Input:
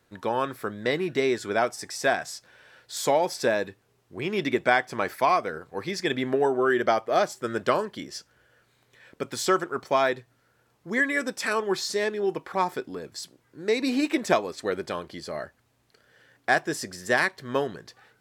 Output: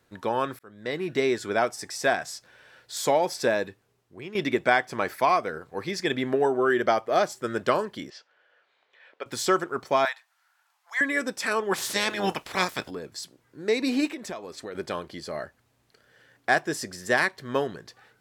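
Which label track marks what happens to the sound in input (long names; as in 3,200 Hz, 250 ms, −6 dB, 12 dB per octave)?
0.590000	1.170000	fade in
3.620000	4.350000	fade out, to −12 dB
8.100000	9.260000	Chebyshev band-pass filter 600–3,300 Hz
10.050000	11.010000	Butterworth high-pass 750 Hz 48 dB per octave
11.710000	12.890000	ceiling on every frequency bin ceiling under each frame's peak by 24 dB
14.090000	14.750000	downward compressor 3 to 1, threshold −36 dBFS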